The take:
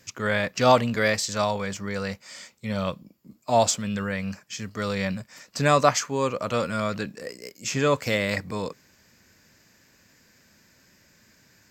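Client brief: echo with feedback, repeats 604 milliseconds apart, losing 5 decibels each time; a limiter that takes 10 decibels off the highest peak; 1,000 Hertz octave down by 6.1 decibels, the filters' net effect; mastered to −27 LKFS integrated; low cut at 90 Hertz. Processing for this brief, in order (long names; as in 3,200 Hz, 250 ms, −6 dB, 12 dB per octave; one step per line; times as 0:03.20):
high-pass filter 90 Hz
parametric band 1,000 Hz −8.5 dB
brickwall limiter −16 dBFS
repeating echo 604 ms, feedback 56%, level −5 dB
level +2 dB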